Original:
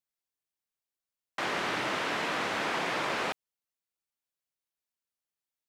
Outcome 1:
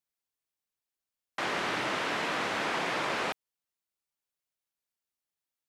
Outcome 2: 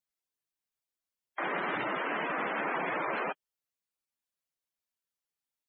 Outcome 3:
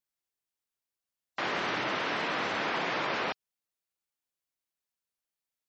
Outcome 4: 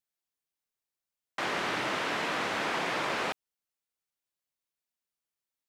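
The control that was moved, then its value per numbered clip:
spectral gate, under each frame's peak: -45, -10, -25, -60 dB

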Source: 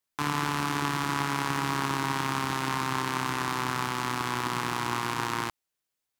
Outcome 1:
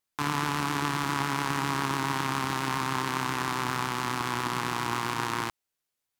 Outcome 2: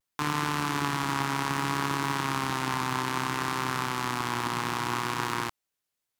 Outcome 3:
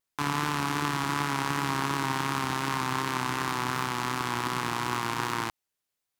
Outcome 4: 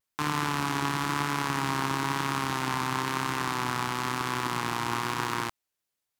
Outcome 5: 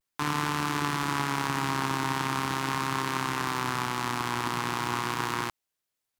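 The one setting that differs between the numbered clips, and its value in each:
vibrato, rate: 7.3, 0.62, 2.7, 1, 0.41 Hz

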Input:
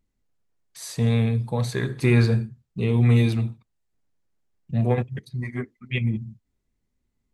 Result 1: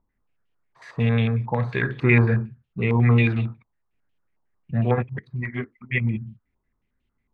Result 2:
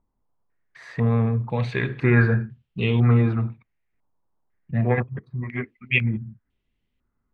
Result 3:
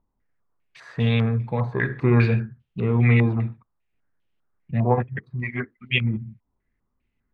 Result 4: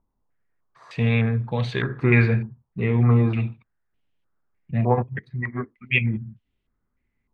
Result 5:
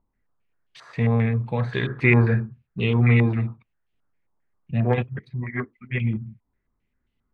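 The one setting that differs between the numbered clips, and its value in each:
stepped low-pass, rate: 11, 2, 5, 3.3, 7.5 Hz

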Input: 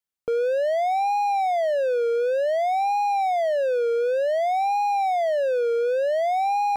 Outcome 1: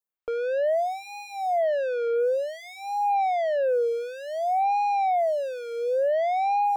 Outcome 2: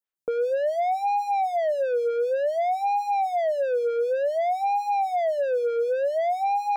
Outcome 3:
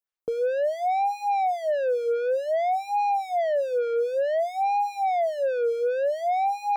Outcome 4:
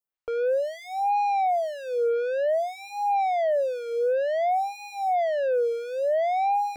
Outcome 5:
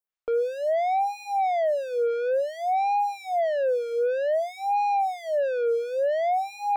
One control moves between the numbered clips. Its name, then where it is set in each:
photocell phaser, rate: 0.67, 3.9, 2.4, 0.99, 1.5 Hz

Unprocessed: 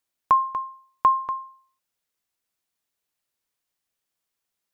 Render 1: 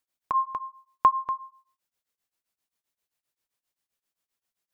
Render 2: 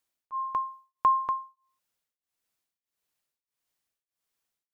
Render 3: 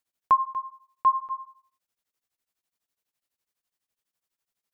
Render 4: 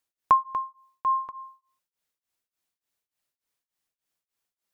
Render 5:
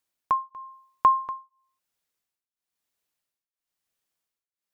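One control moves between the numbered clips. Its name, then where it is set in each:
beating tremolo, nulls at: 7.6, 1.6, 12, 3.4, 1 Hz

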